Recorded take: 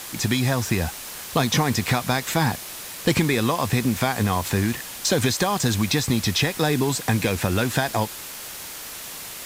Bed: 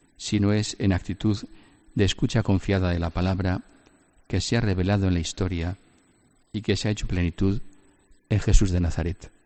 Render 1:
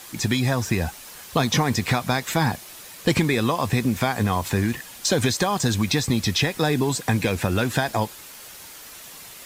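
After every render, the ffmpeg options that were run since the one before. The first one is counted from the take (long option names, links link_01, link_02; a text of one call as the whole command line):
ffmpeg -i in.wav -af "afftdn=noise_reduction=7:noise_floor=-36" out.wav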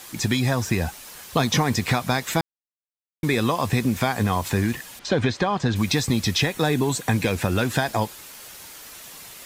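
ffmpeg -i in.wav -filter_complex "[0:a]asettb=1/sr,asplit=3[link_01][link_02][link_03];[link_01]atrim=end=4.994[link_04];[link_02]atrim=start=4.99:end=5.76,asetpts=PTS-STARTPTS,afade=type=in:duration=0.004:curve=qsin,afade=type=out:start_time=0.766:duration=0.004:curve=qsin,lowpass=3100[link_05];[link_03]atrim=start=5.756[link_06];[link_04][link_05]acrossfade=duration=0.004:curve1=hsin:curve2=qsin[link_07];[link_07][link_06]acrossfade=duration=0.004:curve1=qsin:curve2=hsin,asettb=1/sr,asplit=3[link_08][link_09][link_10];[link_08]atrim=end=6.454[link_11];[link_09]atrim=start=6.45:end=7.13,asetpts=PTS-STARTPTS,afade=type=in:duration=0.004:curve=qsin,afade=type=out:start_time=0.676:duration=0.004:curve=qsin,bandreject=frequency=5000:width=8.5[link_12];[link_10]atrim=start=7.126[link_13];[link_11][link_12]acrossfade=duration=0.004:curve1=hsin:curve2=qsin[link_14];[link_14][link_13]acrossfade=duration=0.004:curve1=qsin:curve2=hsin,asplit=3[link_15][link_16][link_17];[link_15]atrim=end=2.41,asetpts=PTS-STARTPTS,afade=type=out:start_time=2.406:duration=0.004:curve=hsin[link_18];[link_16]atrim=start=2.41:end=3.23,asetpts=PTS-STARTPTS,volume=0[link_19];[link_17]atrim=start=3.23,asetpts=PTS-STARTPTS,afade=type=in:duration=0.004:curve=hsin[link_20];[link_18][link_19][link_20]concat=n=3:v=0:a=1" out.wav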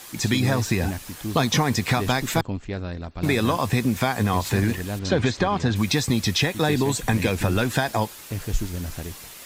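ffmpeg -i in.wav -i bed.wav -filter_complex "[1:a]volume=-7.5dB[link_01];[0:a][link_01]amix=inputs=2:normalize=0" out.wav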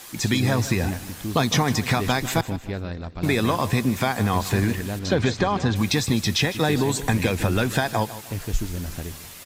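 ffmpeg -i in.wav -af "aecho=1:1:154|308|462:0.178|0.0676|0.0257" out.wav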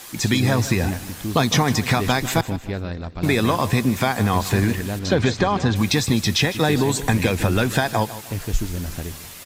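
ffmpeg -i in.wav -af "volume=2.5dB" out.wav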